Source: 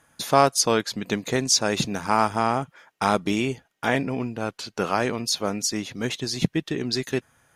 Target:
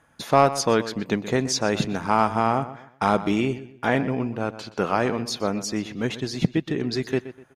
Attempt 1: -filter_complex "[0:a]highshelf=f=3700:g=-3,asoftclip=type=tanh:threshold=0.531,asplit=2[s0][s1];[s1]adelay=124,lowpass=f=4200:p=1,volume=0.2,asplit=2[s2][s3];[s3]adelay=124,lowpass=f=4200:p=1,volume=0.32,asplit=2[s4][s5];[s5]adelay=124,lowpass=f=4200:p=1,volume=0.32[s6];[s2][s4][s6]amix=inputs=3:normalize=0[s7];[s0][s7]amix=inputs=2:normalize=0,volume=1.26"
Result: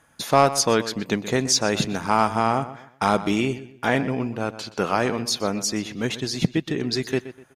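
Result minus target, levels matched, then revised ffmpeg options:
8 kHz band +5.5 dB
-filter_complex "[0:a]highshelf=f=3700:g=-11.5,asoftclip=type=tanh:threshold=0.531,asplit=2[s0][s1];[s1]adelay=124,lowpass=f=4200:p=1,volume=0.2,asplit=2[s2][s3];[s3]adelay=124,lowpass=f=4200:p=1,volume=0.32,asplit=2[s4][s5];[s5]adelay=124,lowpass=f=4200:p=1,volume=0.32[s6];[s2][s4][s6]amix=inputs=3:normalize=0[s7];[s0][s7]amix=inputs=2:normalize=0,volume=1.26"

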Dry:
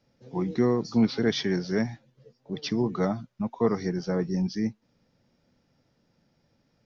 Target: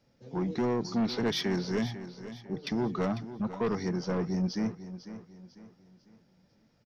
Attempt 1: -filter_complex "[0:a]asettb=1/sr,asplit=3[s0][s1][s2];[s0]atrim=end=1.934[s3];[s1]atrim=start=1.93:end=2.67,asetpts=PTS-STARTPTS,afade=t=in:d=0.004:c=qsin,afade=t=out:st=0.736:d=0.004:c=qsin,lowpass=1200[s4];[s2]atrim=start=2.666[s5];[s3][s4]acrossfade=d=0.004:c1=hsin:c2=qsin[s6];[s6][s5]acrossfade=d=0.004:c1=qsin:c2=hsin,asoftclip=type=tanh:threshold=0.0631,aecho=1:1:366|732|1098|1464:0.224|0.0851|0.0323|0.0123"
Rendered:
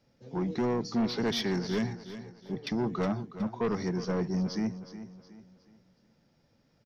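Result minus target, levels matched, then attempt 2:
echo 132 ms early
-filter_complex "[0:a]asettb=1/sr,asplit=3[s0][s1][s2];[s0]atrim=end=1.934[s3];[s1]atrim=start=1.93:end=2.67,asetpts=PTS-STARTPTS,afade=t=in:d=0.004:c=qsin,afade=t=out:st=0.736:d=0.004:c=qsin,lowpass=1200[s4];[s2]atrim=start=2.666[s5];[s3][s4]acrossfade=d=0.004:c1=hsin:c2=qsin[s6];[s6][s5]acrossfade=d=0.004:c1=qsin:c2=hsin,asoftclip=type=tanh:threshold=0.0631,aecho=1:1:498|996|1494|1992:0.224|0.0851|0.0323|0.0123"

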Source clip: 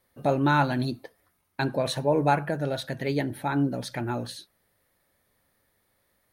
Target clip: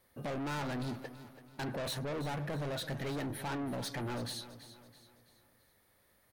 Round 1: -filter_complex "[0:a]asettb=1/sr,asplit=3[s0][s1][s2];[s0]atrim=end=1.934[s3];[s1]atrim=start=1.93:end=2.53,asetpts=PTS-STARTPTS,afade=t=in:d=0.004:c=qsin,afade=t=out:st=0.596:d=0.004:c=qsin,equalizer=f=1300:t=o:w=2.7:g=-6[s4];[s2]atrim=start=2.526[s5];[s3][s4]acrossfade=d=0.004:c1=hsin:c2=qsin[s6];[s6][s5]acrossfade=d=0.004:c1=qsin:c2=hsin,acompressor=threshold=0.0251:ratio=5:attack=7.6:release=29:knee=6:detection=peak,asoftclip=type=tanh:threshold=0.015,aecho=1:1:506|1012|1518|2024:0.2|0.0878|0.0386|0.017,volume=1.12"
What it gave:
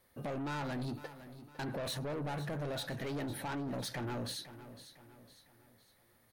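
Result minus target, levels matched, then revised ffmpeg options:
echo 175 ms late; compression: peak gain reduction +6.5 dB
-filter_complex "[0:a]asettb=1/sr,asplit=3[s0][s1][s2];[s0]atrim=end=1.934[s3];[s1]atrim=start=1.93:end=2.53,asetpts=PTS-STARTPTS,afade=t=in:d=0.004:c=qsin,afade=t=out:st=0.596:d=0.004:c=qsin,equalizer=f=1300:t=o:w=2.7:g=-6[s4];[s2]atrim=start=2.526[s5];[s3][s4]acrossfade=d=0.004:c1=hsin:c2=qsin[s6];[s6][s5]acrossfade=d=0.004:c1=qsin:c2=hsin,acompressor=threshold=0.0631:ratio=5:attack=7.6:release=29:knee=6:detection=peak,asoftclip=type=tanh:threshold=0.015,aecho=1:1:331|662|993|1324:0.2|0.0878|0.0386|0.017,volume=1.12"

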